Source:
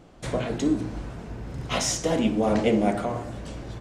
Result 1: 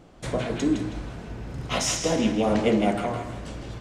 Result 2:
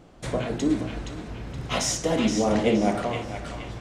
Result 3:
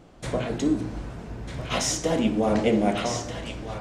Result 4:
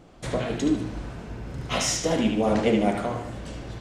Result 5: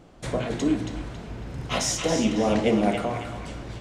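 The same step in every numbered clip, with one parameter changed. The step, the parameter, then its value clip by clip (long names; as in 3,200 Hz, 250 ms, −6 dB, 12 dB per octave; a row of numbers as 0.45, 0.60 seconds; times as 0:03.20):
feedback echo with a band-pass in the loop, delay time: 161, 471, 1,248, 75, 275 milliseconds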